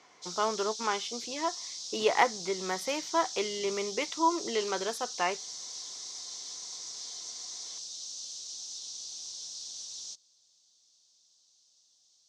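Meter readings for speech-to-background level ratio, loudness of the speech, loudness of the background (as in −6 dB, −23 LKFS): 6.5 dB, −32.0 LKFS, −38.5 LKFS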